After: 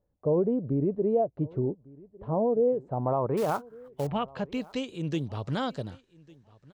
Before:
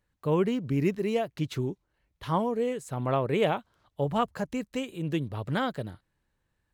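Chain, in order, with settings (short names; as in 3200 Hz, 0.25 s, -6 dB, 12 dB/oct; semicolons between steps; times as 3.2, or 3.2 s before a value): dynamic EQ 1900 Hz, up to -7 dB, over -49 dBFS, Q 1.6; limiter -21 dBFS, peak gain reduction 5.5 dB; low-pass sweep 600 Hz -> 6000 Hz, 2.74–5.02; 3.37–4.07 short-mantissa float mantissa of 2-bit; on a send: feedback echo 1.152 s, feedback 17%, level -23.5 dB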